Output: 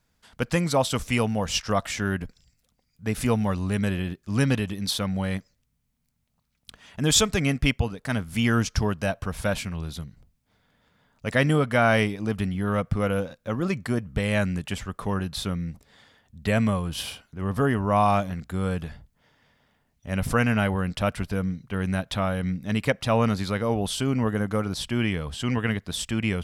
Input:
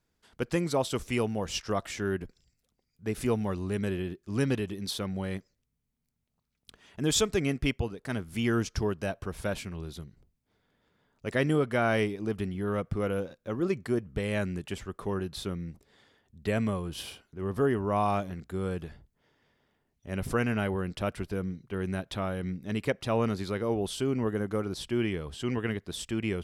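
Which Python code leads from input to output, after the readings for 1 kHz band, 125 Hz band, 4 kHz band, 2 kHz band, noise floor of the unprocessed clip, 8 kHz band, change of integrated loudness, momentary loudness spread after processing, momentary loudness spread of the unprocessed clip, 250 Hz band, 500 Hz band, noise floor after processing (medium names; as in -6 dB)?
+7.0 dB, +7.0 dB, +7.5 dB, +7.5 dB, -79 dBFS, +7.5 dB, +5.5 dB, 10 LU, 10 LU, +5.0 dB, +3.0 dB, -72 dBFS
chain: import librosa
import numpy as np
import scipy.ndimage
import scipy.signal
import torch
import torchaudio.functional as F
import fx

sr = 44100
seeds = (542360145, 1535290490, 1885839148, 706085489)

y = fx.peak_eq(x, sr, hz=370.0, db=-11.0, octaves=0.51)
y = F.gain(torch.from_numpy(y), 7.5).numpy()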